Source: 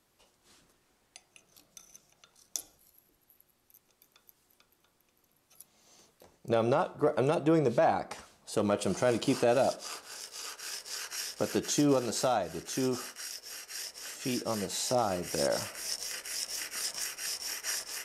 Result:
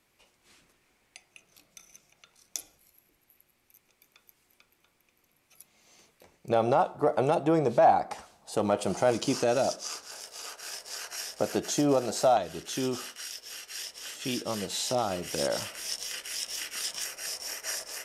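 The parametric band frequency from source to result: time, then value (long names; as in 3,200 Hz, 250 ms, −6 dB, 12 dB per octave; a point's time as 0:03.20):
parametric band +8.5 dB 0.57 octaves
2,300 Hz
from 0:06.52 780 Hz
from 0:09.13 5,900 Hz
from 0:10.11 680 Hz
from 0:12.37 3,300 Hz
from 0:17.05 590 Hz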